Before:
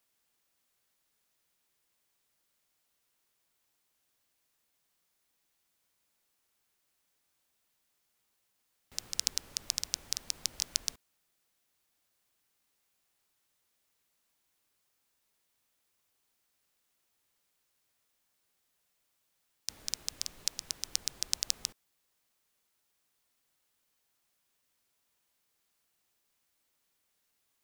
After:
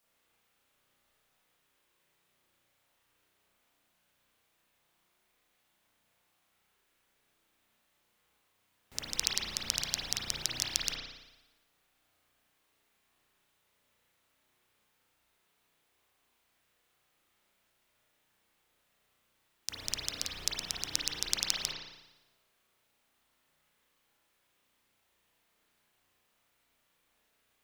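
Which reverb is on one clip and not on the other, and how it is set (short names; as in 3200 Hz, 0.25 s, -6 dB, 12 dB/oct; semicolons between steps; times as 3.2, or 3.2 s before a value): spring tank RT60 1 s, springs 33 ms, chirp 25 ms, DRR -7.5 dB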